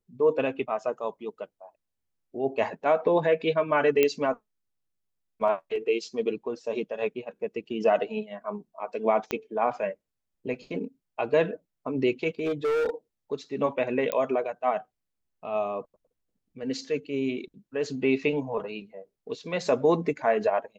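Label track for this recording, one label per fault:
4.030000	4.030000	click −9 dBFS
9.310000	9.310000	click −14 dBFS
12.390000	12.900000	clipping −23 dBFS
14.120000	14.120000	click −12 dBFS

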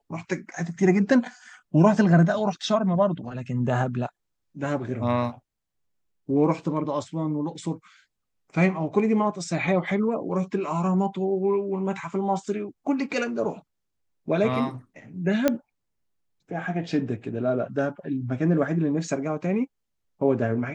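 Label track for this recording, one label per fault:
15.480000	15.480000	click −7 dBFS

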